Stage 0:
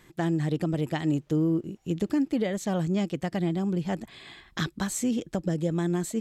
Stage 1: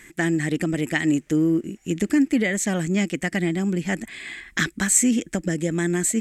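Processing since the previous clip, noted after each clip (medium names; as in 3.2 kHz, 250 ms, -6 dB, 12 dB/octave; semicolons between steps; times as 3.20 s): graphic EQ 125/250/500/1000/2000/4000/8000 Hz -10/+4/-4/-8/+12/-7/+11 dB; trim +6 dB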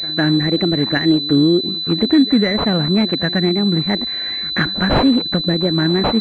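wow and flutter 140 cents; reverse echo 153 ms -19.5 dB; class-D stage that switches slowly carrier 4 kHz; trim +6.5 dB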